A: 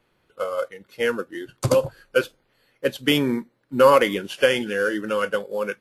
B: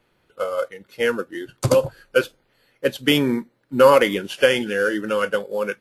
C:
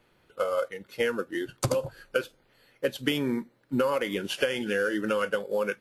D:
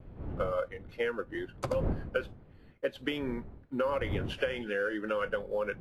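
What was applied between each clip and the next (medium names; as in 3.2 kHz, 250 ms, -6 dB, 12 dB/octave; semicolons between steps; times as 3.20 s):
band-stop 1.1 kHz, Q 24; trim +2 dB
compression 10:1, threshold -23 dBFS, peak gain reduction 15.5 dB
wind noise 120 Hz -30 dBFS; expander -43 dBFS; tone controls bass -8 dB, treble -15 dB; trim -4 dB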